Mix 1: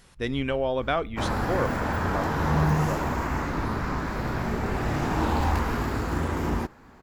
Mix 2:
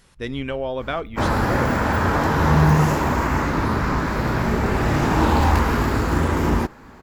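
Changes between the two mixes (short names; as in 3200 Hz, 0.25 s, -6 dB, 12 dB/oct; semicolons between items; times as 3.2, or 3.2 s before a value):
second sound +7.5 dB; master: add notch 730 Hz, Q 20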